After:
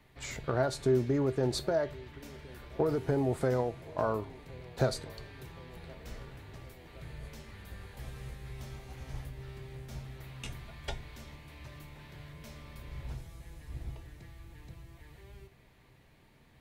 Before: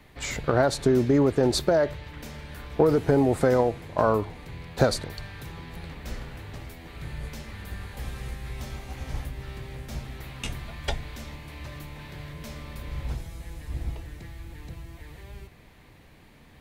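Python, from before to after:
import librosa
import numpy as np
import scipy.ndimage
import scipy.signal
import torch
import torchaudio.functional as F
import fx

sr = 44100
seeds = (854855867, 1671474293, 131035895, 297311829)

y = fx.comb_fb(x, sr, f0_hz=130.0, decay_s=0.22, harmonics='odd', damping=0.0, mix_pct=60)
y = fx.echo_banded(y, sr, ms=1068, feedback_pct=66, hz=450.0, wet_db=-22.0)
y = F.gain(torch.from_numpy(y), -2.5).numpy()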